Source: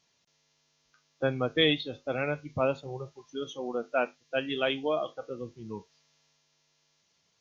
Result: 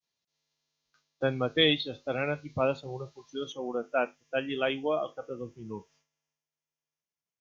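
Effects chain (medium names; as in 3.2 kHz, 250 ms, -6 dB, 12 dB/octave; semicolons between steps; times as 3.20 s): peaking EQ 4.1 kHz +4.5 dB 0.45 oct, from 3.52 s -11.5 dB; expander -60 dBFS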